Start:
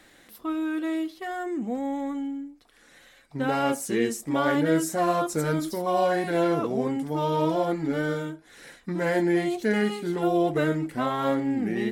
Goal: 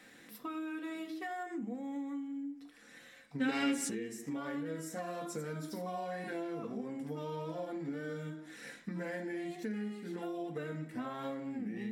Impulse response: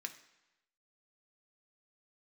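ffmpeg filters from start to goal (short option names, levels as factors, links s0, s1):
-filter_complex "[0:a]lowshelf=f=420:g=8.5[s0];[1:a]atrim=start_sample=2205,afade=t=out:st=0.31:d=0.01,atrim=end_sample=14112[s1];[s0][s1]afir=irnorm=-1:irlink=0,acompressor=threshold=0.0141:ratio=6,asplit=3[s2][s3][s4];[s2]afade=t=out:st=3.4:d=0.02[s5];[s3]equalizer=f=125:t=o:w=1:g=-7,equalizer=f=250:t=o:w=1:g=11,equalizer=f=2000:t=o:w=1:g=12,equalizer=f=4000:t=o:w=1:g=10,equalizer=f=8000:t=o:w=1:g=9,afade=t=in:st=3.4:d=0.02,afade=t=out:st=3.88:d=0.02[s6];[s4]afade=t=in:st=3.88:d=0.02[s7];[s5][s6][s7]amix=inputs=3:normalize=0,volume=0.891"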